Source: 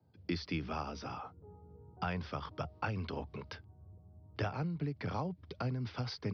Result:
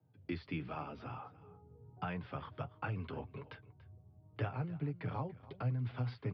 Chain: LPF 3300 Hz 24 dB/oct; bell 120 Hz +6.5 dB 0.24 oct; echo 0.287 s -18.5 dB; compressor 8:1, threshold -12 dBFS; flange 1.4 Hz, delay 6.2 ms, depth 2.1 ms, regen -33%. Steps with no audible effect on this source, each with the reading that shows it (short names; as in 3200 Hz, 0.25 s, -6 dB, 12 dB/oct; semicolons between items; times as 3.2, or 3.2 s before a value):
compressor, threshold -12 dBFS: input peak -22.0 dBFS